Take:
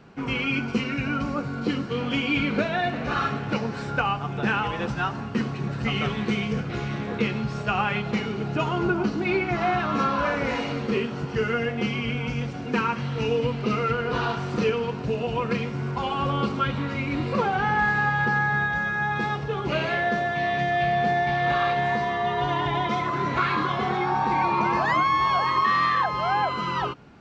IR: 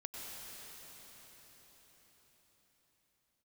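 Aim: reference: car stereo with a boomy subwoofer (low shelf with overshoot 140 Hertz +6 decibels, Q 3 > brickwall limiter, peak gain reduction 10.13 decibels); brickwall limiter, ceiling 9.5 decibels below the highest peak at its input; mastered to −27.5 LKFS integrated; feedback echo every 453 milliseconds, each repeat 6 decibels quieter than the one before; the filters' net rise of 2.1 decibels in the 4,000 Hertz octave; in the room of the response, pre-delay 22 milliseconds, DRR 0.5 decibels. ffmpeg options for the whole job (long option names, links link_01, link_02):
-filter_complex "[0:a]equalizer=frequency=4000:width_type=o:gain=3,alimiter=limit=-19.5dB:level=0:latency=1,aecho=1:1:453|906|1359|1812|2265|2718:0.501|0.251|0.125|0.0626|0.0313|0.0157,asplit=2[link_01][link_02];[1:a]atrim=start_sample=2205,adelay=22[link_03];[link_02][link_03]afir=irnorm=-1:irlink=0,volume=0dB[link_04];[link_01][link_04]amix=inputs=2:normalize=0,lowshelf=frequency=140:width_type=q:width=3:gain=6,alimiter=limit=-19.5dB:level=0:latency=1"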